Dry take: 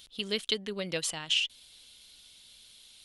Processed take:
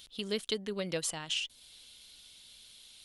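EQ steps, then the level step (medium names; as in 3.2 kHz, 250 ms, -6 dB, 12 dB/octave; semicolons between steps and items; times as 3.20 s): dynamic bell 2.9 kHz, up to -7 dB, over -42 dBFS, Q 0.84; 0.0 dB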